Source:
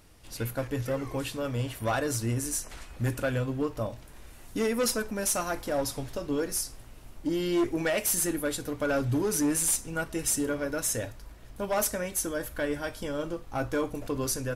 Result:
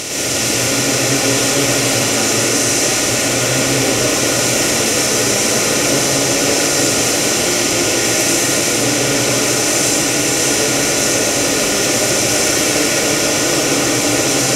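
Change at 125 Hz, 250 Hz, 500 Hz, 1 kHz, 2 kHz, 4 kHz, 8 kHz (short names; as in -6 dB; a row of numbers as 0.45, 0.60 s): +10.5, +12.5, +13.5, +15.5, +19.5, +25.0, +20.0 dB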